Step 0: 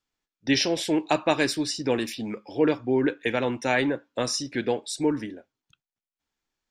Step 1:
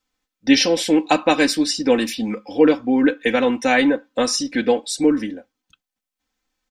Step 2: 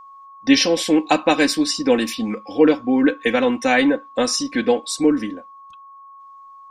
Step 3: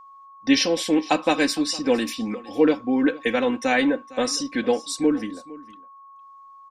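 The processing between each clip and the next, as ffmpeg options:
-af "aecho=1:1:3.9:0.77,volume=1.78"
-af "aeval=exprs='val(0)+0.01*sin(2*PI*1100*n/s)':c=same"
-af "aecho=1:1:458:0.1,volume=0.631"

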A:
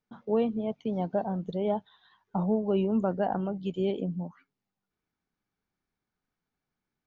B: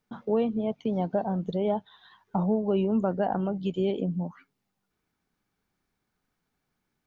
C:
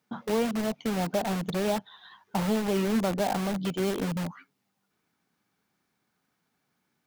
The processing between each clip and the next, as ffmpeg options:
-af "acompressor=threshold=0.0112:ratio=1.5,volume=2.24"
-filter_complex "[0:a]highpass=140,equalizer=f=410:w=1.8:g=-2.5,asplit=2[s0][s1];[s1]aeval=exprs='(mod(28.2*val(0)+1,2)-1)/28.2':c=same,volume=0.668[s2];[s0][s2]amix=inputs=2:normalize=0"

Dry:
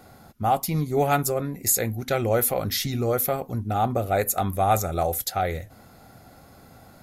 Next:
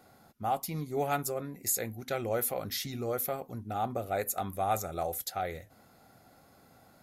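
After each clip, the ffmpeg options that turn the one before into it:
-af "lowshelf=f=100:g=-10.5,volume=0.376"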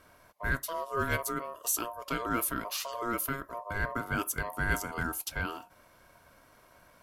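-af "aeval=exprs='val(0)*sin(2*PI*820*n/s)':c=same,volume=1.41"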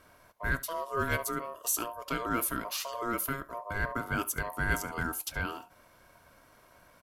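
-af "aecho=1:1:71:0.0944"

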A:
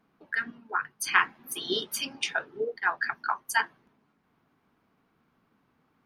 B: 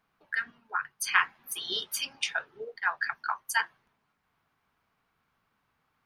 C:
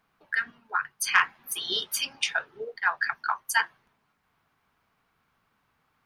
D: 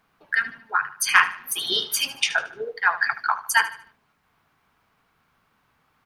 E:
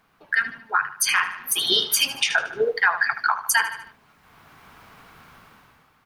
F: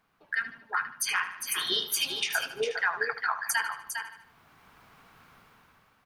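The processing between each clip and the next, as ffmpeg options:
-af "equalizer=f=270:w=0.65:g=-14.5"
-af "acontrast=68,volume=0.708"
-af "aecho=1:1:75|150|225|300:0.2|0.0738|0.0273|0.0101,volume=1.78"
-af "dynaudnorm=f=190:g=7:m=5.31,alimiter=limit=0.251:level=0:latency=1:release=229,volume=1.5"
-af "aecho=1:1:404:0.447,volume=0.376"

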